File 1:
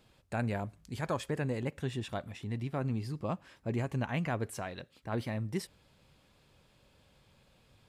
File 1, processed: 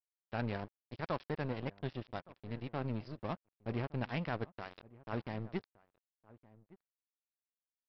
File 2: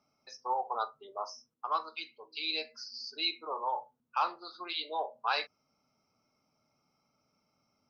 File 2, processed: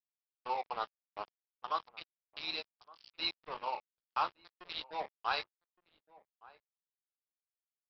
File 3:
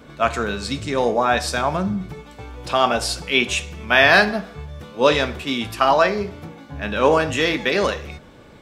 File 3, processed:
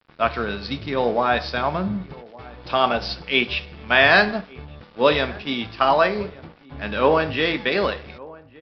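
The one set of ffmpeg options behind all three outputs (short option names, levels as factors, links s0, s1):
-filter_complex "[0:a]aresample=11025,aeval=exprs='sgn(val(0))*max(abs(val(0))-0.0112,0)':c=same,aresample=44100,asplit=2[s0][s1];[s1]adelay=1166,volume=0.0891,highshelf=f=4000:g=-26.2[s2];[s0][s2]amix=inputs=2:normalize=0,volume=0.891"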